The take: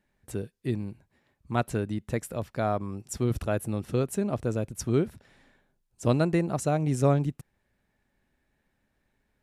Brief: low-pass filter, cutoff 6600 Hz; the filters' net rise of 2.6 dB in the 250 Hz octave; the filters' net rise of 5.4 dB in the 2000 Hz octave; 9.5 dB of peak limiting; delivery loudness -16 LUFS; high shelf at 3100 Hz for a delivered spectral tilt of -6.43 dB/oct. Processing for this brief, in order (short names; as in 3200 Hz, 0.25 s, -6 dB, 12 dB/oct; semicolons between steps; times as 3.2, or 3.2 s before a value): LPF 6600 Hz; bell 250 Hz +3.5 dB; bell 2000 Hz +9 dB; high shelf 3100 Hz -4.5 dB; gain +15.5 dB; limiter -4 dBFS